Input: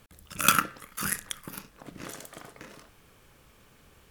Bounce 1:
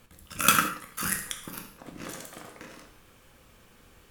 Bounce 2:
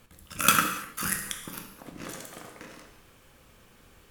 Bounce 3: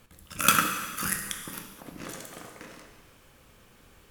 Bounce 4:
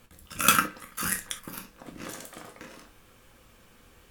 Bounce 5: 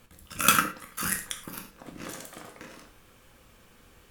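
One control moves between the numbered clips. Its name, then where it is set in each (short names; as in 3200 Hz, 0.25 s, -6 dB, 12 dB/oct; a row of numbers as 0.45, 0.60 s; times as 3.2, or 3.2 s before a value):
non-linear reverb, gate: 210, 340, 510, 90, 140 ms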